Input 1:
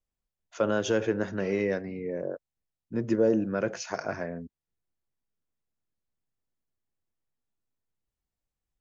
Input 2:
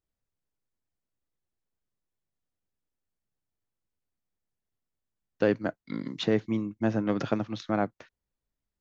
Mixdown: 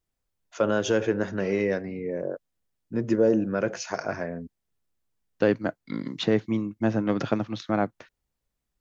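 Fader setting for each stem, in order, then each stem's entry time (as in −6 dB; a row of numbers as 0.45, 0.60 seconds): +2.5, +2.5 decibels; 0.00, 0.00 seconds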